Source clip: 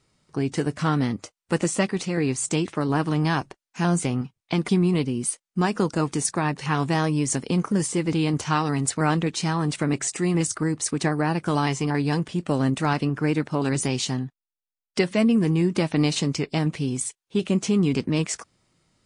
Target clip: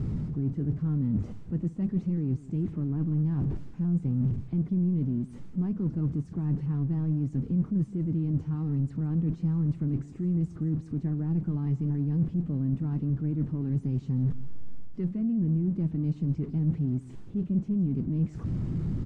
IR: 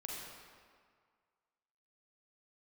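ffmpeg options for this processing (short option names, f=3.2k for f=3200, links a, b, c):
-af "aeval=exprs='val(0)+0.5*0.0708*sgn(val(0))':c=same,areverse,acompressor=threshold=-27dB:ratio=6,areverse,firequalizer=gain_entry='entry(170,0);entry(560,-21);entry(7400,-5)':delay=0.05:min_phase=1,aecho=1:1:165:0.126,adynamicsmooth=sensitivity=1:basefreq=880,volume=4.5dB"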